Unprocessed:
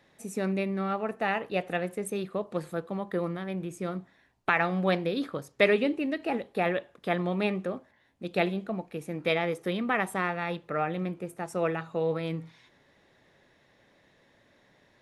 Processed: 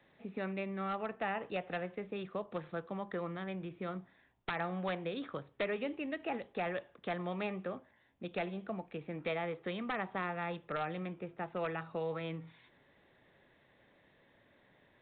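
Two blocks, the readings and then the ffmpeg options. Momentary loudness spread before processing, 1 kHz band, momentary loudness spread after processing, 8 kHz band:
9 LU, −7.5 dB, 6 LU, below −30 dB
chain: -filter_complex "[0:a]acrossover=split=140|630|1500[link_01][link_02][link_03][link_04];[link_01]acompressor=threshold=-47dB:ratio=4[link_05];[link_02]acompressor=threshold=-38dB:ratio=4[link_06];[link_03]acompressor=threshold=-33dB:ratio=4[link_07];[link_04]acompressor=threshold=-40dB:ratio=4[link_08];[link_05][link_06][link_07][link_08]amix=inputs=4:normalize=0,aresample=8000,aeval=exprs='0.0631*(abs(mod(val(0)/0.0631+3,4)-2)-1)':channel_layout=same,aresample=44100,volume=-3.5dB"

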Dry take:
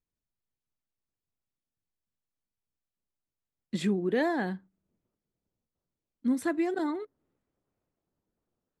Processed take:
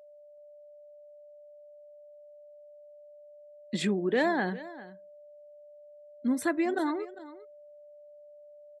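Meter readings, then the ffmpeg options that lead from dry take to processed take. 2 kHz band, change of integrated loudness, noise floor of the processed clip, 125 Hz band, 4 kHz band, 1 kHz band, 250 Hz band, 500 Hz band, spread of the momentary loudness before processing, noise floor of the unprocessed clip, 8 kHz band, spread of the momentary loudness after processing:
+3.5 dB, +0.5 dB, −52 dBFS, −1.0 dB, +4.0 dB, +3.0 dB, 0.0 dB, +1.5 dB, 11 LU, below −85 dBFS, +4.0 dB, 20 LU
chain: -filter_complex "[0:a]afftdn=noise_reduction=14:noise_floor=-56,lowshelf=frequency=360:gain=-7,asplit=2[link_01][link_02];[link_02]acompressor=threshold=-42dB:ratio=12,volume=-1dB[link_03];[link_01][link_03]amix=inputs=2:normalize=0,aeval=exprs='val(0)+0.00224*sin(2*PI*590*n/s)':channel_layout=same,aecho=1:1:400:0.141,volume=2.5dB"

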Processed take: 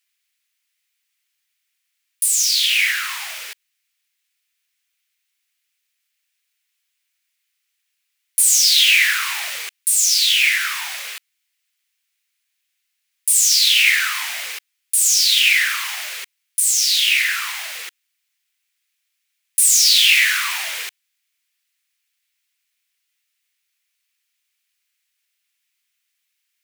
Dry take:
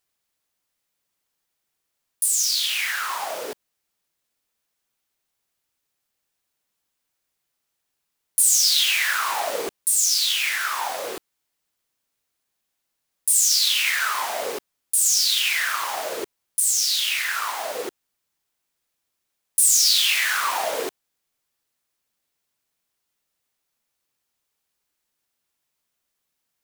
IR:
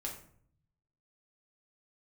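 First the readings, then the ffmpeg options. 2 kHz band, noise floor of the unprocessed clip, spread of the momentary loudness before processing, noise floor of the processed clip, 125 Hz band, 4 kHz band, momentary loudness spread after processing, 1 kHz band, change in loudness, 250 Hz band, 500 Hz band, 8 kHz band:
+7.5 dB, −79 dBFS, 15 LU, −74 dBFS, can't be measured, +6.0 dB, 17 LU, −6.0 dB, +5.0 dB, below −25 dB, below −15 dB, +3.5 dB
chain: -af "acontrast=52,highpass=frequency=2200:width_type=q:width=2,volume=-2.5dB"

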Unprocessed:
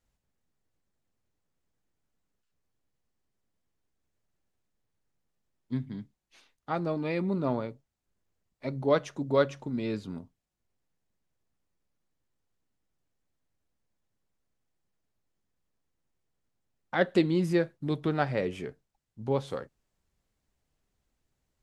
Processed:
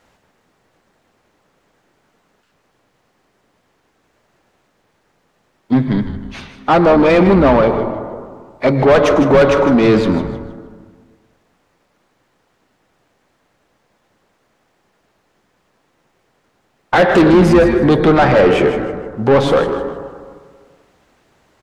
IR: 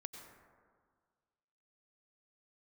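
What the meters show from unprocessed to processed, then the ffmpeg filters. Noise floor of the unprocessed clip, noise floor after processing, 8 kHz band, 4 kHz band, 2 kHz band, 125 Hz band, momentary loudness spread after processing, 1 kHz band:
−82 dBFS, −63 dBFS, can't be measured, +17.0 dB, +18.5 dB, +16.0 dB, 16 LU, +20.0 dB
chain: -filter_complex "[0:a]asplit=2[link_01][link_02];[1:a]atrim=start_sample=2205[link_03];[link_02][link_03]afir=irnorm=-1:irlink=0,volume=-3dB[link_04];[link_01][link_04]amix=inputs=2:normalize=0,asplit=2[link_05][link_06];[link_06]highpass=frequency=720:poles=1,volume=30dB,asoftclip=type=tanh:threshold=-6.5dB[link_07];[link_05][link_07]amix=inputs=2:normalize=0,lowpass=frequency=1200:poles=1,volume=-6dB,acontrast=84,asplit=5[link_08][link_09][link_10][link_11][link_12];[link_09]adelay=156,afreqshift=-120,volume=-11dB[link_13];[link_10]adelay=312,afreqshift=-240,volume=-20.4dB[link_14];[link_11]adelay=468,afreqshift=-360,volume=-29.7dB[link_15];[link_12]adelay=624,afreqshift=-480,volume=-39.1dB[link_16];[link_08][link_13][link_14][link_15][link_16]amix=inputs=5:normalize=0"

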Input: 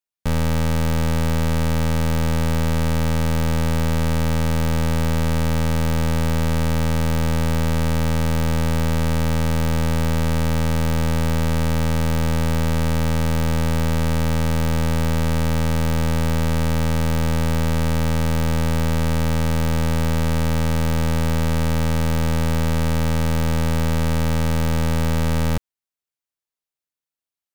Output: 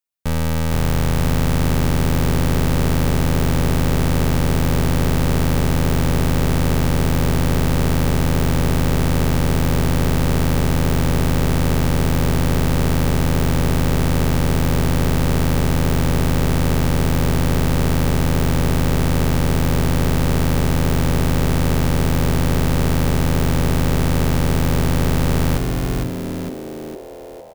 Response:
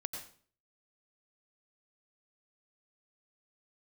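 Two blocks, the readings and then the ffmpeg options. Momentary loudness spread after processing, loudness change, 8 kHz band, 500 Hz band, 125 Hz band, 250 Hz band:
1 LU, +2.5 dB, +4.0 dB, +3.0 dB, +2.5 dB, +3.0 dB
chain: -filter_complex "[0:a]highshelf=frequency=11000:gain=6,asplit=2[link_01][link_02];[link_02]asplit=8[link_03][link_04][link_05][link_06][link_07][link_08][link_09][link_10];[link_03]adelay=457,afreqshift=-130,volume=-3dB[link_11];[link_04]adelay=914,afreqshift=-260,volume=-8.2dB[link_12];[link_05]adelay=1371,afreqshift=-390,volume=-13.4dB[link_13];[link_06]adelay=1828,afreqshift=-520,volume=-18.6dB[link_14];[link_07]adelay=2285,afreqshift=-650,volume=-23.8dB[link_15];[link_08]adelay=2742,afreqshift=-780,volume=-29dB[link_16];[link_09]adelay=3199,afreqshift=-910,volume=-34.2dB[link_17];[link_10]adelay=3656,afreqshift=-1040,volume=-39.3dB[link_18];[link_11][link_12][link_13][link_14][link_15][link_16][link_17][link_18]amix=inputs=8:normalize=0[link_19];[link_01][link_19]amix=inputs=2:normalize=0"

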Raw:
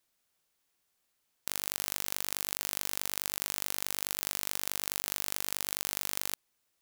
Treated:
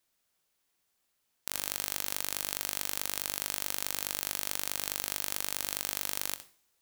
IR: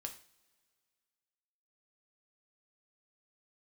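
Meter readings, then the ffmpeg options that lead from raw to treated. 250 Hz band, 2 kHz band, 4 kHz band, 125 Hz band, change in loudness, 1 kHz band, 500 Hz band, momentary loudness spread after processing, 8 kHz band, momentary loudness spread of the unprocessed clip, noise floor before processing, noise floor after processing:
+0.5 dB, +0.5 dB, +0.5 dB, −1.0 dB, +0.5 dB, +0.5 dB, +1.0 dB, 2 LU, +0.5 dB, 2 LU, −78 dBFS, −78 dBFS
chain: -filter_complex "[0:a]asplit=2[link_01][link_02];[1:a]atrim=start_sample=2205,adelay=64[link_03];[link_02][link_03]afir=irnorm=-1:irlink=0,volume=-8.5dB[link_04];[link_01][link_04]amix=inputs=2:normalize=0"

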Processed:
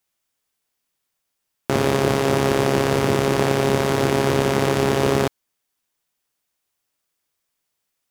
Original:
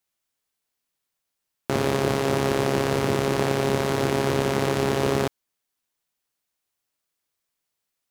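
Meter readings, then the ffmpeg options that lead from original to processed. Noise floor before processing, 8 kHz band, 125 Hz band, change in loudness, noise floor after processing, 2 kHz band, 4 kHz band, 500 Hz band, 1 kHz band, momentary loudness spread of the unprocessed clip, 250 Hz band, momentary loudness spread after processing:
−82 dBFS, +4.0 dB, +4.0 dB, +4.0 dB, −78 dBFS, +4.0 dB, +3.5 dB, +4.0 dB, +4.0 dB, 3 LU, +4.0 dB, 3 LU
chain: -af "bandreject=frequency=4100:width=29,volume=4dB"

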